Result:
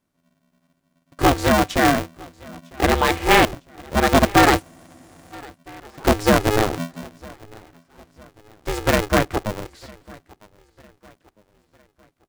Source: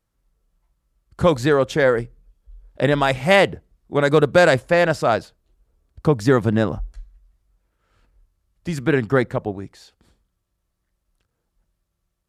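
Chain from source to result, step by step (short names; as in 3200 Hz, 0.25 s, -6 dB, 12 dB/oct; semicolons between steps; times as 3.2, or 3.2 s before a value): on a send: feedback echo 0.954 s, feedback 44%, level -24 dB; on the sum: spectral freeze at 4.65, 0.69 s; polarity switched at an audio rate 210 Hz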